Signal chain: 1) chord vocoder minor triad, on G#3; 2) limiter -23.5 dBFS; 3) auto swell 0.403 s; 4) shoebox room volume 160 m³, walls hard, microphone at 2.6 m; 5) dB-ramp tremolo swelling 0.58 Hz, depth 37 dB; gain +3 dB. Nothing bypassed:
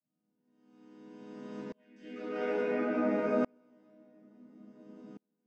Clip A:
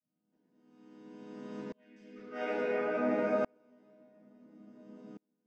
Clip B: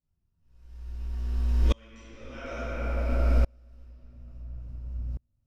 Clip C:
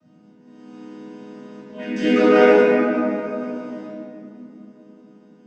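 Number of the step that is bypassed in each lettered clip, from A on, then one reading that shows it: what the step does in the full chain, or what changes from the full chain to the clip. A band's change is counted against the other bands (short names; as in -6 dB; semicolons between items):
2, 250 Hz band -3.5 dB; 1, 125 Hz band +26.0 dB; 5, 125 Hz band -2.5 dB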